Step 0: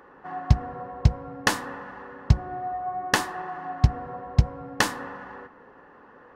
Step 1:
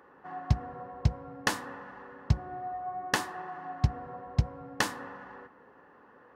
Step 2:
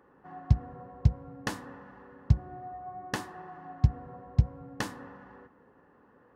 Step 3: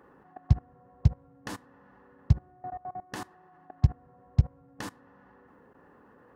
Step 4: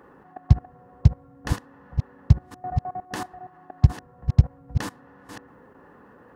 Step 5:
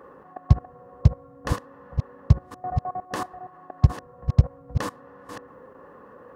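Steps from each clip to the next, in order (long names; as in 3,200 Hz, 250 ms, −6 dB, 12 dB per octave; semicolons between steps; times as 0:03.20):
high-pass filter 57 Hz; level −6 dB
low-shelf EQ 350 Hz +11.5 dB; level −7.5 dB
output level in coarse steps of 21 dB; level +5.5 dB
delay that plays each chunk backwards 509 ms, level −9 dB; level +6 dB
hollow resonant body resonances 530/1,100 Hz, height 10 dB, ringing for 20 ms; level −1 dB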